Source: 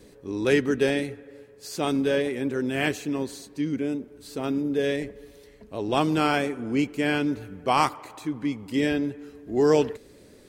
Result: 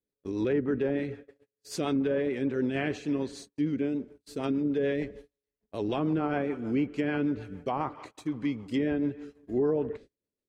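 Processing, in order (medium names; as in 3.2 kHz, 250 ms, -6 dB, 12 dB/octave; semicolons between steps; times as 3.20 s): rotary cabinet horn 6.7 Hz; gate -44 dBFS, range -39 dB; low-pass that closes with the level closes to 1 kHz, closed at -19.5 dBFS; peak limiter -19.5 dBFS, peak gain reduction 9 dB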